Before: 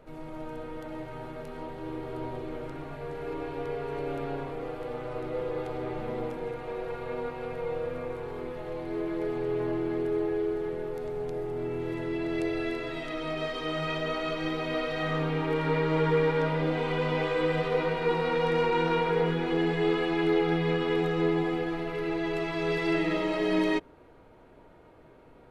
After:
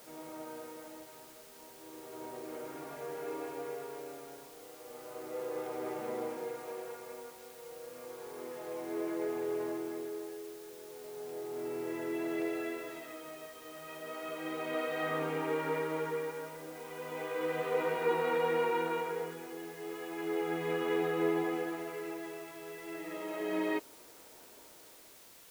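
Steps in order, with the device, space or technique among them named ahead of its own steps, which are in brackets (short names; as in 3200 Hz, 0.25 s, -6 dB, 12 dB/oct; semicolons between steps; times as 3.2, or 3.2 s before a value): shortwave radio (BPF 290–2700 Hz; tremolo 0.33 Hz, depth 79%; white noise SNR 19 dB); gain -2.5 dB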